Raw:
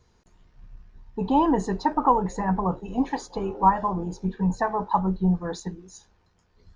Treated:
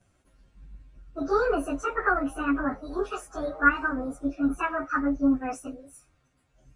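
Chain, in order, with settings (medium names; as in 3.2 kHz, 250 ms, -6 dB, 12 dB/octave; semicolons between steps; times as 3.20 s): frequency-domain pitch shifter +7 st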